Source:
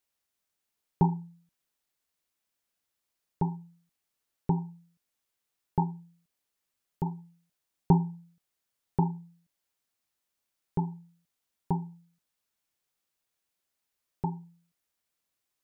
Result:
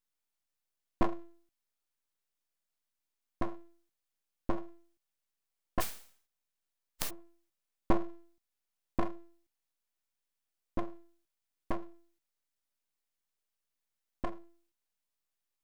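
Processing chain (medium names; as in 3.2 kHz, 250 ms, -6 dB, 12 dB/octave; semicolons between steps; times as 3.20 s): 5.80–7.09 s: spectral contrast reduction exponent 0.16; full-wave rectifier; trim -3 dB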